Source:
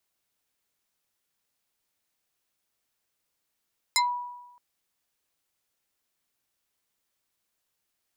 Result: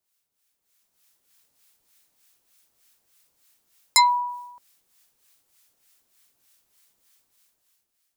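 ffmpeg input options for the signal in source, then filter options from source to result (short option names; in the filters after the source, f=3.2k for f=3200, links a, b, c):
-f lavfi -i "aevalsrc='0.126*pow(10,-3*t/1.02)*sin(2*PI*976*t+3.5*pow(10,-3*t/0.15)*sin(2*PI*3.14*976*t))':d=0.62:s=44100"
-filter_complex "[0:a]acrossover=split=1000[a][b];[a]aeval=exprs='val(0)*(1-0.7/2+0.7/2*cos(2*PI*3.3*n/s))':c=same[c];[b]aeval=exprs='val(0)*(1-0.7/2-0.7/2*cos(2*PI*3.3*n/s))':c=same[d];[c][d]amix=inputs=2:normalize=0,highshelf=f=3.9k:g=7,dynaudnorm=f=160:g=11:m=12.5dB"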